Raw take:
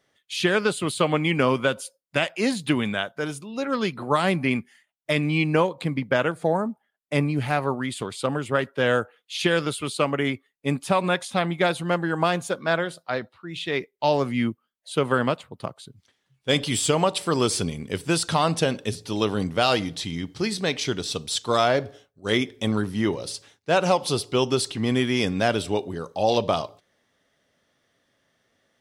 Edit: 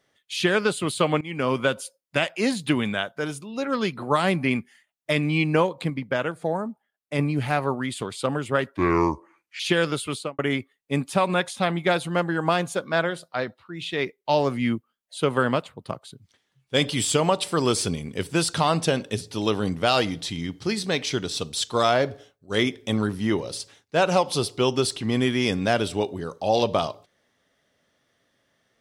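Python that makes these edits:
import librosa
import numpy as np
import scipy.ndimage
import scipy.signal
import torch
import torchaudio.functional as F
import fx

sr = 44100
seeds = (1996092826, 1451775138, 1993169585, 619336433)

y = fx.studio_fade_out(x, sr, start_s=9.88, length_s=0.25)
y = fx.edit(y, sr, fx.fade_in_from(start_s=1.21, length_s=0.39, floor_db=-21.5),
    fx.clip_gain(start_s=5.9, length_s=1.29, db=-3.5),
    fx.speed_span(start_s=8.77, length_s=0.57, speed=0.69), tone=tone)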